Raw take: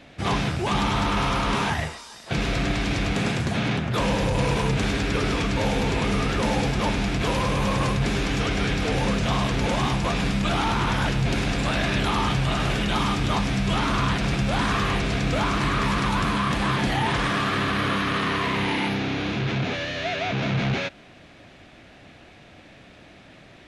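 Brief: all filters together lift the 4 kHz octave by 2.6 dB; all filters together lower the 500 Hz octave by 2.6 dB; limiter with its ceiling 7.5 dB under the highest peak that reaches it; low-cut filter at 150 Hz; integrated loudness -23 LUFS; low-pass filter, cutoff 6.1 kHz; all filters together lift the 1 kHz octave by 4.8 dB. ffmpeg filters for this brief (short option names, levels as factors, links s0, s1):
-af "highpass=150,lowpass=6100,equalizer=f=500:t=o:g=-5.5,equalizer=f=1000:t=o:g=7,equalizer=f=4000:t=o:g=3.5,volume=1.33,alimiter=limit=0.224:level=0:latency=1"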